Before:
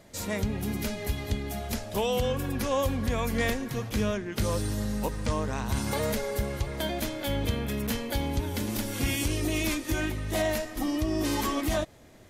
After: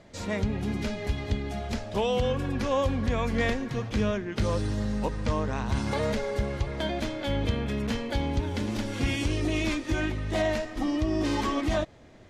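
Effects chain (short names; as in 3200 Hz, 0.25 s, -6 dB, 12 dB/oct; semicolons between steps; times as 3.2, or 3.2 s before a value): air absorption 100 m; gain +1.5 dB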